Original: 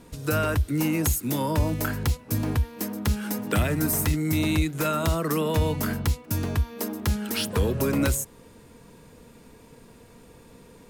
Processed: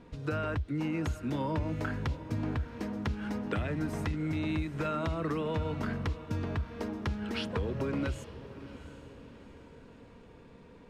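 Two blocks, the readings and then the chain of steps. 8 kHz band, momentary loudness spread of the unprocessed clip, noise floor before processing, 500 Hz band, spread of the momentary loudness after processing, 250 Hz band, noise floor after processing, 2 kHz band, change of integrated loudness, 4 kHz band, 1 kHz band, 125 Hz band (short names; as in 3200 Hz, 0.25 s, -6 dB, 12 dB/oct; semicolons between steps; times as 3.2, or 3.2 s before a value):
-23.5 dB, 5 LU, -51 dBFS, -7.5 dB, 17 LU, -7.0 dB, -54 dBFS, -7.5 dB, -8.5 dB, -11.0 dB, -7.0 dB, -8.0 dB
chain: LPF 3100 Hz 12 dB/oct; compressor, threshold -25 dBFS, peak gain reduction 7.5 dB; on a send: diffused feedback echo 0.746 s, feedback 45%, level -14 dB; on the sum: gain -4 dB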